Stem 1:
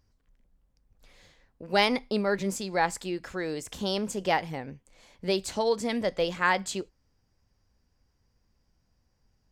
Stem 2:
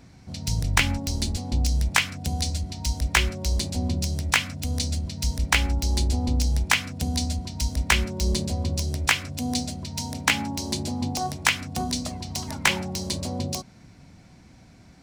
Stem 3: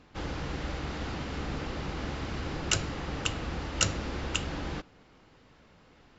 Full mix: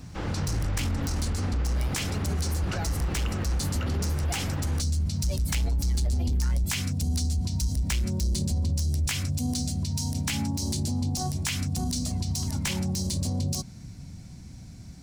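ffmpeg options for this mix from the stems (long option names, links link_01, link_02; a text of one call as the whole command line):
ffmpeg -i stem1.wav -i stem2.wav -i stem3.wav -filter_complex "[0:a]aexciter=amount=11.3:drive=6.2:freq=10000,aphaser=in_gain=1:out_gain=1:delay=3.7:decay=0.77:speed=0.42:type=triangular,volume=-11.5dB[link_01];[1:a]bass=frequency=250:gain=14,treble=frequency=4000:gain=13,volume=-4dB[link_02];[2:a]acrossover=split=2600[link_03][link_04];[link_04]acompressor=threshold=-52dB:ratio=4:attack=1:release=60[link_05];[link_03][link_05]amix=inputs=2:normalize=0,volume=3dB[link_06];[link_01][link_02]amix=inputs=2:normalize=0,asoftclip=type=tanh:threshold=-11.5dB,alimiter=limit=-17.5dB:level=0:latency=1,volume=0dB[link_07];[link_06][link_07]amix=inputs=2:normalize=0,alimiter=limit=-21dB:level=0:latency=1:release=47" out.wav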